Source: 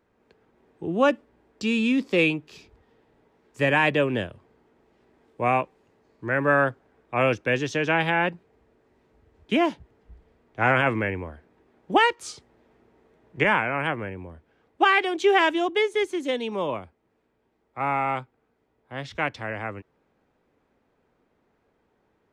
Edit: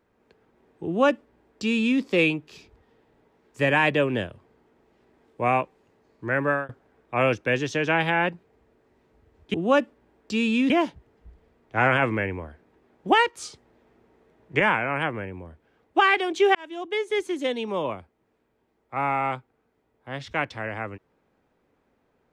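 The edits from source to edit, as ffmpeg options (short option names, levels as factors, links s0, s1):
-filter_complex "[0:a]asplit=5[s0][s1][s2][s3][s4];[s0]atrim=end=6.69,asetpts=PTS-STARTPTS,afade=t=out:st=6.32:d=0.37:c=qsin[s5];[s1]atrim=start=6.69:end=9.542,asetpts=PTS-STARTPTS,afade=t=in:d=0.004:c=hsin[s6];[s2]atrim=start=0.848:end=2.012[s7];[s3]atrim=start=9.538:end=15.39,asetpts=PTS-STARTPTS,afade=t=out:st=5.848:d=0.004:c=hsin[s8];[s4]atrim=start=15.39,asetpts=PTS-STARTPTS,afade=t=in:d=0.69[s9];[s5][s6]concat=n=2:v=0:a=1[s10];[s10][s7]acrossfade=d=0.004:c1=hsin:c2=hsin[s11];[s8][s9]concat=n=2:v=0:a=1[s12];[s11][s12]acrossfade=d=0.004:c1=hsin:c2=hsin"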